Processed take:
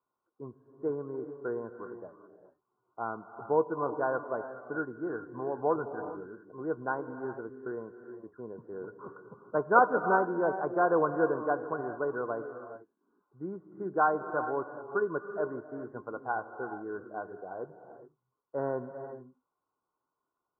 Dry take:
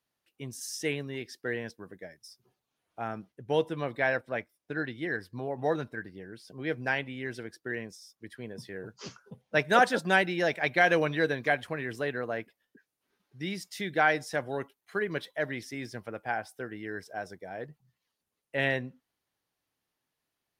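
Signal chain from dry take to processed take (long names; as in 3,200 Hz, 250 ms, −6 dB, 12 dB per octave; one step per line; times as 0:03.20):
Chebyshev low-pass with heavy ripple 1,500 Hz, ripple 9 dB
parametric band 990 Hz +11 dB 1.4 octaves
reverb whose tail is shaped and stops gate 450 ms rising, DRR 9 dB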